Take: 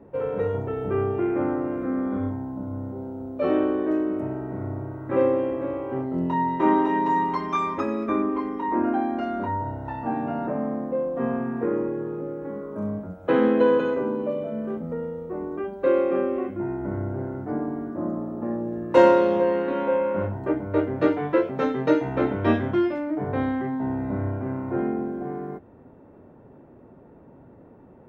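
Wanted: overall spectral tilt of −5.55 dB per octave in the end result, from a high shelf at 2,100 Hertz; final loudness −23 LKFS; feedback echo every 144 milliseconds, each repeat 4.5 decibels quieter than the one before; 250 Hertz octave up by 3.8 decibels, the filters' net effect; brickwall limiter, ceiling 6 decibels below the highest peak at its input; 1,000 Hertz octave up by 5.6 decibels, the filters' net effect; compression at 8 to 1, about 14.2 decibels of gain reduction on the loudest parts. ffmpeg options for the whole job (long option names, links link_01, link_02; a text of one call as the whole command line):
ffmpeg -i in.wav -af "equalizer=frequency=250:width_type=o:gain=4.5,equalizer=frequency=1000:width_type=o:gain=7.5,highshelf=frequency=2100:gain=-7,acompressor=threshold=-22dB:ratio=8,alimiter=limit=-19dB:level=0:latency=1,aecho=1:1:144|288|432|576|720|864|1008|1152|1296:0.596|0.357|0.214|0.129|0.0772|0.0463|0.0278|0.0167|0.01,volume=4.5dB" out.wav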